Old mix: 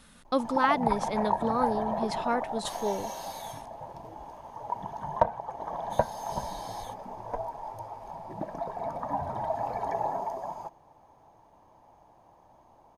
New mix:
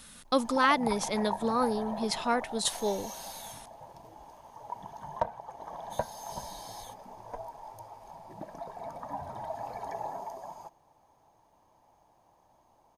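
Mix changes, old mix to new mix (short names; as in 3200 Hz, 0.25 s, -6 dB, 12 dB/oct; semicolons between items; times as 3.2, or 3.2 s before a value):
background -7.5 dB; master: add high shelf 3000 Hz +10.5 dB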